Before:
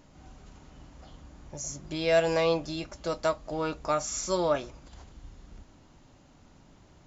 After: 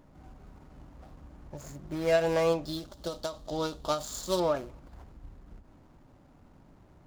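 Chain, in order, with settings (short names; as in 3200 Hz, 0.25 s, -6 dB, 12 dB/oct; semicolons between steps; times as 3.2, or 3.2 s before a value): median filter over 15 samples; 2.65–4.4 resonant high shelf 2900 Hz +7 dB, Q 3; ending taper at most 160 dB/s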